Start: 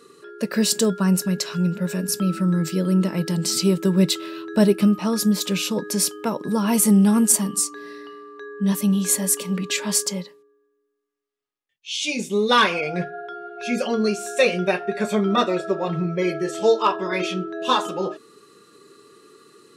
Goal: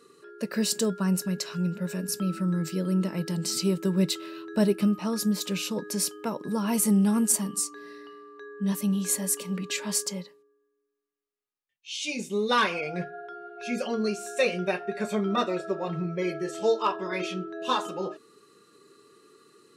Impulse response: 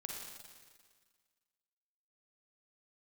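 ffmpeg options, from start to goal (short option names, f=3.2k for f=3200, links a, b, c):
-af "bandreject=f=3.4k:w=23,volume=-6.5dB"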